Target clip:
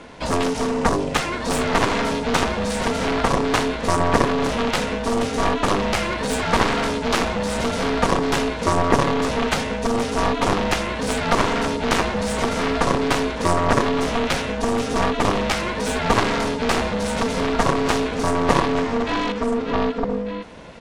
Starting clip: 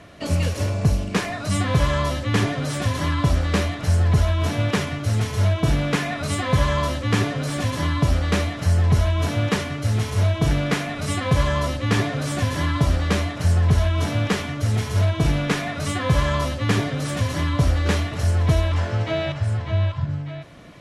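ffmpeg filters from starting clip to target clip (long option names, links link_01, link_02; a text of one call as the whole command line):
ffmpeg -i in.wav -af "aresample=22050,aresample=44100,aeval=exprs='val(0)*sin(2*PI*350*n/s)':channel_layout=same,aeval=exprs='0.501*(cos(1*acos(clip(val(0)/0.501,-1,1)))-cos(1*PI/2))+0.0891*(cos(3*acos(clip(val(0)/0.501,-1,1)))-cos(3*PI/2))+0.0708*(cos(4*acos(clip(val(0)/0.501,-1,1)))-cos(4*PI/2))+0.0891*(cos(6*acos(clip(val(0)/0.501,-1,1)))-cos(6*PI/2))+0.141*(cos(7*acos(clip(val(0)/0.501,-1,1)))-cos(7*PI/2))':channel_layout=same,volume=3.5dB" out.wav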